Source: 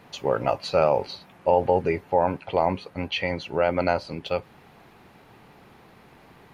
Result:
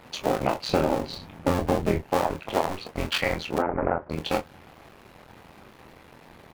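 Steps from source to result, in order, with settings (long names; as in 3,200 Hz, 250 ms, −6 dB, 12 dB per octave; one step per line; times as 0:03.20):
sub-harmonics by changed cycles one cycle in 2, muted
0:00.69–0:02.04: low-shelf EQ 370 Hz +11 dB
0:03.58–0:04.10: inverse Chebyshev low-pass filter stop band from 4,000 Hz, stop band 50 dB
downward compressor 10 to 1, threshold −23 dBFS, peak gain reduction 11.5 dB
on a send: ambience of single reflections 24 ms −7 dB, 37 ms −13 dB
on the sum: level +4 dB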